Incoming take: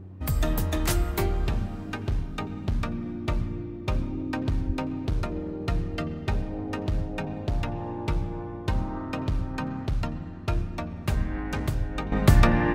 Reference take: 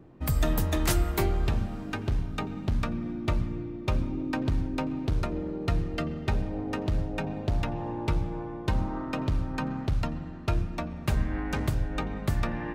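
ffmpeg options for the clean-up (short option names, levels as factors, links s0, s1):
-filter_complex "[0:a]bandreject=f=93.8:t=h:w=4,bandreject=f=187.6:t=h:w=4,bandreject=f=281.4:t=h:w=4,bandreject=f=375.2:t=h:w=4,asplit=3[s0][s1][s2];[s0]afade=t=out:st=4.66:d=0.02[s3];[s1]highpass=f=140:w=0.5412,highpass=f=140:w=1.3066,afade=t=in:st=4.66:d=0.02,afade=t=out:st=4.78:d=0.02[s4];[s2]afade=t=in:st=4.78:d=0.02[s5];[s3][s4][s5]amix=inputs=3:normalize=0,asetnsamples=n=441:p=0,asendcmd='12.12 volume volume -10.5dB',volume=1"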